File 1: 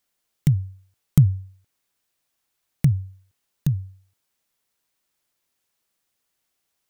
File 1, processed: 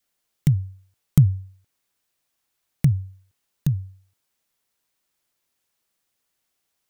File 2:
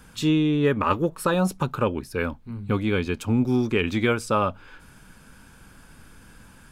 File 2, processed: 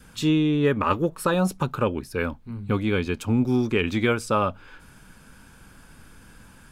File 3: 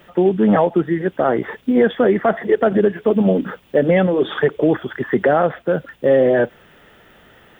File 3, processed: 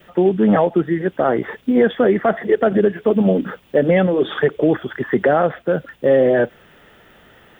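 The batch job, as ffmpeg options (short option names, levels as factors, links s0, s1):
-af "adynamicequalizer=threshold=0.0126:dfrequency=950:dqfactor=3.9:tfrequency=950:tqfactor=3.9:attack=5:release=100:ratio=0.375:range=2:mode=cutabove:tftype=bell"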